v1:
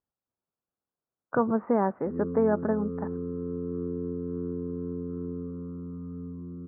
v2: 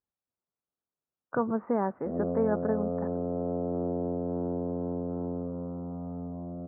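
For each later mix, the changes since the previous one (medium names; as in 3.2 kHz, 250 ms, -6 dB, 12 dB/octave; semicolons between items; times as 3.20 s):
speech -3.5 dB; background: remove elliptic band-stop 450–1100 Hz, stop band 50 dB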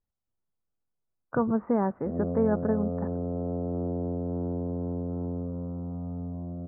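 background -3.5 dB; master: remove high-pass 290 Hz 6 dB/octave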